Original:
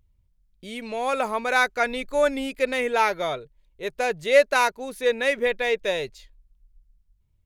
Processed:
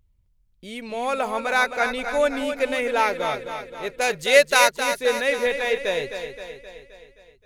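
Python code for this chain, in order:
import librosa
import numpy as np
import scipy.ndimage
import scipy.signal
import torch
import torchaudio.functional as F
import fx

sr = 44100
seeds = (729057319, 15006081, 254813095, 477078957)

y = fx.high_shelf(x, sr, hz=2400.0, db=11.0, at=(4.01, 4.81))
y = fx.echo_feedback(y, sr, ms=262, feedback_pct=56, wet_db=-8.5)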